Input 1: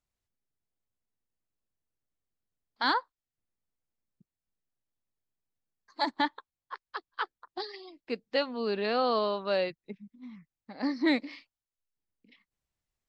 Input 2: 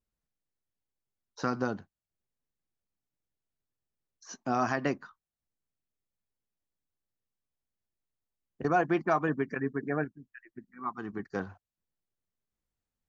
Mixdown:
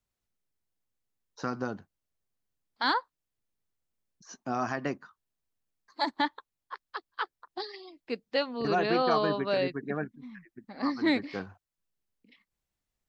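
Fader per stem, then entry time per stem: 0.0 dB, -2.5 dB; 0.00 s, 0.00 s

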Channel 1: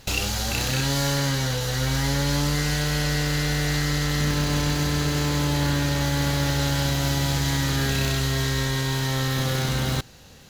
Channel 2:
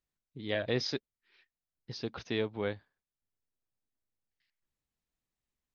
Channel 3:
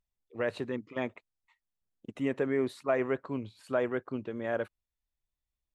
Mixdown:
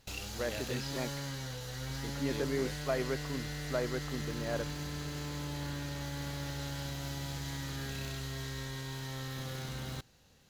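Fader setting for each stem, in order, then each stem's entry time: -16.0 dB, -10.5 dB, -5.0 dB; 0.00 s, 0.00 s, 0.00 s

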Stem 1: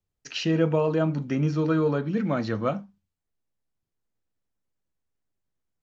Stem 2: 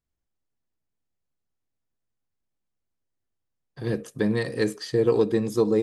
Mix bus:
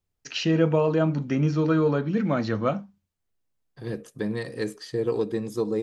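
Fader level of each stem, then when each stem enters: +1.5 dB, -5.0 dB; 0.00 s, 0.00 s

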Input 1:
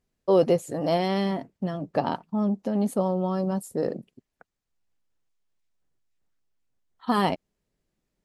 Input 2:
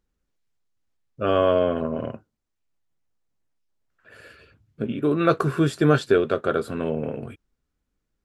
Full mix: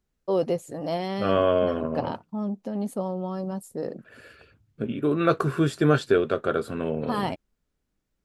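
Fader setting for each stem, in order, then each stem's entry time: -4.5 dB, -2.0 dB; 0.00 s, 0.00 s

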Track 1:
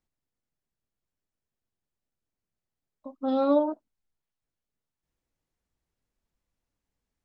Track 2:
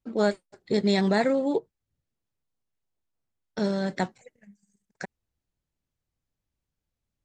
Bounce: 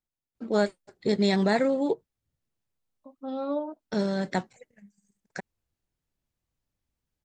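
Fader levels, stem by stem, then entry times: -7.5 dB, -0.5 dB; 0.00 s, 0.35 s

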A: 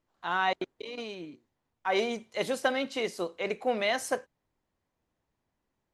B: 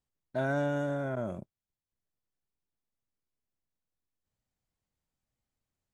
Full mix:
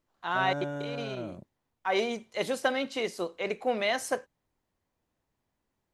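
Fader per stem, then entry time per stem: 0.0 dB, -4.5 dB; 0.00 s, 0.00 s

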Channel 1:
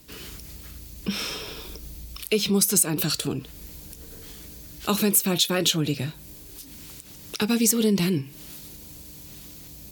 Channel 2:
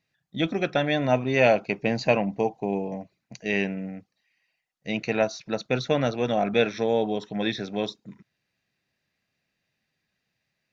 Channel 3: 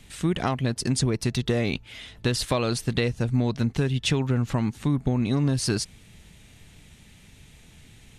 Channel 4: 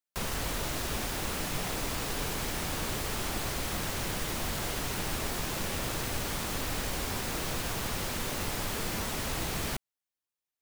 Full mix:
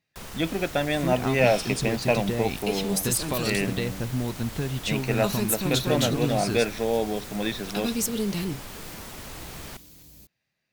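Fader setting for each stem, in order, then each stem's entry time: -6.5 dB, -1.5 dB, -5.0 dB, -6.5 dB; 0.35 s, 0.00 s, 0.80 s, 0.00 s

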